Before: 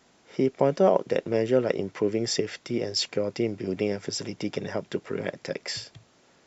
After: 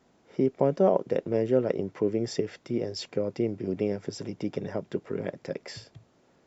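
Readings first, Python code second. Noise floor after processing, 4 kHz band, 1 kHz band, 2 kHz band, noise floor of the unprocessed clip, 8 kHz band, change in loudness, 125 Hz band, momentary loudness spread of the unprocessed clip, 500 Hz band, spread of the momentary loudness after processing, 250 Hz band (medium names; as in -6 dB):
-64 dBFS, -10.5 dB, -3.5 dB, -8.0 dB, -61 dBFS, no reading, -2.0 dB, 0.0 dB, 11 LU, -1.5 dB, 13 LU, -0.5 dB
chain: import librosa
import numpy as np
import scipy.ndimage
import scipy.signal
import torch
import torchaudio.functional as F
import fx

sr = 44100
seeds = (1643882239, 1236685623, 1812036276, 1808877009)

y = fx.tilt_shelf(x, sr, db=5.5, hz=1200.0)
y = y * 10.0 ** (-5.5 / 20.0)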